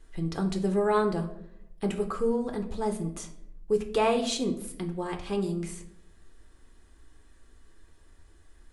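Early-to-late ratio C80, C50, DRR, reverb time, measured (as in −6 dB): 15.0 dB, 11.5 dB, 3.5 dB, 0.75 s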